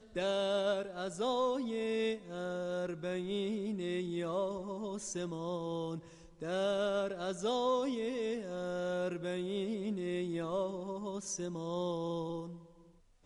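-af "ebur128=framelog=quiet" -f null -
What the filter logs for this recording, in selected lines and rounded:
Integrated loudness:
  I:         -36.5 LUFS
  Threshold: -46.7 LUFS
Loudness range:
  LRA:         2.9 LU
  Threshold: -56.8 LUFS
  LRA low:   -38.2 LUFS
  LRA high:  -35.4 LUFS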